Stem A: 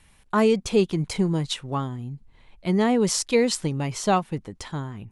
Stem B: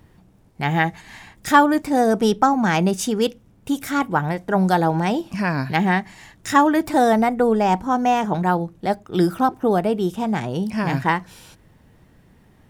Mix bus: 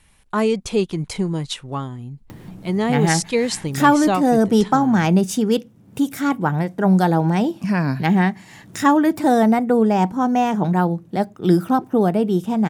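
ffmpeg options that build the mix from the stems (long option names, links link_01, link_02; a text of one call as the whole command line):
ffmpeg -i stem1.wav -i stem2.wav -filter_complex "[0:a]volume=0.5dB[link_01];[1:a]acompressor=mode=upward:threshold=-27dB:ratio=2.5,highpass=110,equalizer=frequency=170:width=0.54:gain=7.5,adelay=2300,volume=-2.5dB[link_02];[link_01][link_02]amix=inputs=2:normalize=0,highshelf=frequency=9400:gain=3.5" out.wav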